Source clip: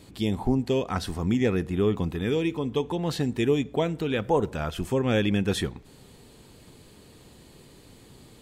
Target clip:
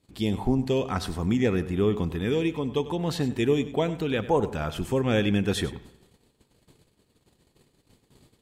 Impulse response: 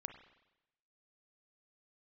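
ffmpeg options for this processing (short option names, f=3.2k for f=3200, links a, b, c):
-filter_complex "[0:a]agate=range=-21dB:threshold=-48dB:ratio=16:detection=peak,asplit=2[a][b];[1:a]atrim=start_sample=2205,adelay=98[c];[b][c]afir=irnorm=-1:irlink=0,volume=-10.5dB[d];[a][d]amix=inputs=2:normalize=0"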